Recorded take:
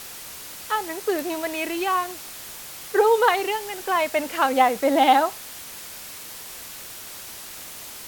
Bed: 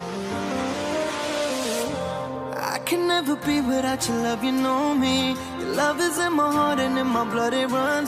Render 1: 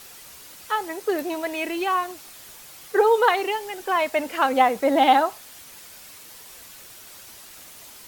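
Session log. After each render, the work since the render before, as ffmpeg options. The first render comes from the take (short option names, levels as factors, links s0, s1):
-af "afftdn=nr=7:nf=-39"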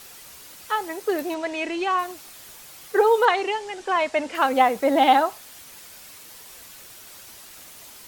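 -filter_complex "[0:a]asettb=1/sr,asplit=3[s0][s1][s2];[s0]atrim=end=1.344[s3];[s1]atrim=start=1.34:end=1.99,asetpts=PTS-STARTPTS,afade=t=in:d=0.004:c=qsin,afade=t=out:st=0.646:d=0.004:c=qsin,lowpass=f=7700:w=0.5412,lowpass=f=7700:w=1.3066[s4];[s2]atrim=start=1.986[s5];[s3][s4]acrossfade=d=0.004:c1=hsin:c2=qsin[s6];[s6][s5]acrossfade=d=0.004:c1=qsin:c2=hsin,asettb=1/sr,asplit=3[s7][s8][s9];[s7]atrim=end=3.254[s10];[s8]atrim=start=3.25:end=4.35,asetpts=PTS-STARTPTS,afade=t=in:d=0.004:c=qsin,afade=t=out:st=1.096:d=0.004:c=qsin,lowpass=f=8200:w=0.5412,lowpass=f=8200:w=1.3066[s11];[s9]atrim=start=4.346[s12];[s10][s11]acrossfade=d=0.004:c1=hsin:c2=qsin[s13];[s13][s12]acrossfade=d=0.004:c1=qsin:c2=hsin"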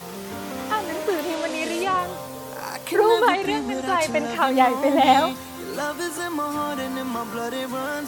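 -filter_complex "[1:a]volume=0.531[s0];[0:a][s0]amix=inputs=2:normalize=0"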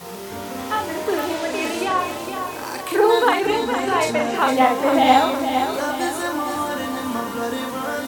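-filter_complex "[0:a]asplit=2[s0][s1];[s1]adelay=43,volume=0.631[s2];[s0][s2]amix=inputs=2:normalize=0,aecho=1:1:461|922|1383|1844|2305|2766:0.422|0.215|0.11|0.0559|0.0285|0.0145"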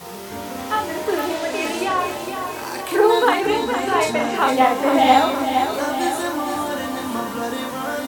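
-filter_complex "[0:a]asplit=2[s0][s1];[s1]adelay=14,volume=0.299[s2];[s0][s2]amix=inputs=2:normalize=0,aecho=1:1:960:0.188"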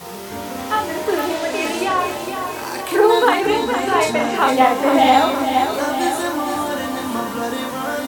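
-af "volume=1.26,alimiter=limit=0.794:level=0:latency=1"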